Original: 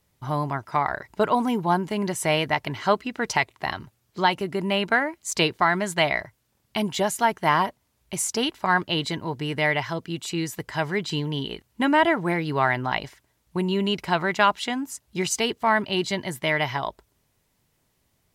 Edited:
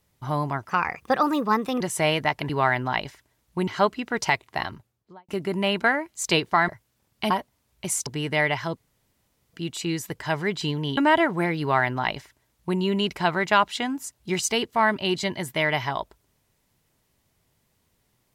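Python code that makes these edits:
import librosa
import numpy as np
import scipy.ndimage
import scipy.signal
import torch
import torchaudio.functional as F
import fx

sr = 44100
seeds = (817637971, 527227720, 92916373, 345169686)

y = fx.studio_fade_out(x, sr, start_s=3.67, length_s=0.69)
y = fx.edit(y, sr, fx.speed_span(start_s=0.69, length_s=1.37, speed=1.23),
    fx.cut(start_s=5.76, length_s=0.45),
    fx.cut(start_s=6.83, length_s=0.76),
    fx.cut(start_s=8.35, length_s=0.97),
    fx.insert_room_tone(at_s=10.02, length_s=0.77),
    fx.cut(start_s=11.46, length_s=0.39),
    fx.duplicate(start_s=12.48, length_s=1.18, to_s=2.75), tone=tone)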